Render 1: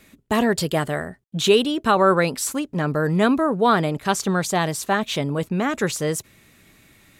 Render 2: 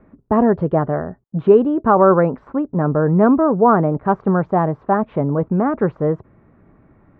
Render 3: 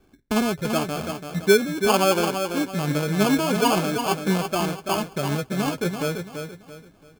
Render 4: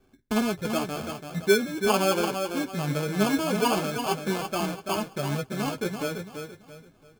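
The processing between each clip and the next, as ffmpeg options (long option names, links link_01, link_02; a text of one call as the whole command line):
ffmpeg -i in.wav -af "lowpass=frequency=1200:width=0.5412,lowpass=frequency=1200:width=1.3066,volume=5.5dB" out.wav
ffmpeg -i in.wav -af "flanger=delay=2.5:depth=9.2:regen=32:speed=0.42:shape=sinusoidal,acrusher=samples=23:mix=1:aa=0.000001,aecho=1:1:336|672|1008|1344:0.447|0.147|0.0486|0.0161,volume=-4dB" out.wav
ffmpeg -i in.wav -af "flanger=delay=7.6:depth=2.4:regen=-44:speed=0.73:shape=triangular" out.wav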